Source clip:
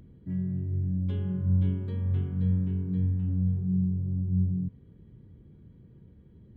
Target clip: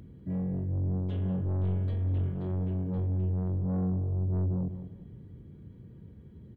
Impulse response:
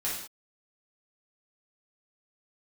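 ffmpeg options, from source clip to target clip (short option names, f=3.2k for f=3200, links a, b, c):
-filter_complex "[0:a]highpass=45,asoftclip=type=tanh:threshold=-31.5dB,asplit=2[a][b];[b]adelay=194,lowpass=f=1.4k:p=1,volume=-10dB,asplit=2[c][d];[d]adelay=194,lowpass=f=1.4k:p=1,volume=0.37,asplit=2[e][f];[f]adelay=194,lowpass=f=1.4k:p=1,volume=0.37,asplit=2[g][h];[h]adelay=194,lowpass=f=1.4k:p=1,volume=0.37[i];[a][c][e][g][i]amix=inputs=5:normalize=0,volume=3.5dB"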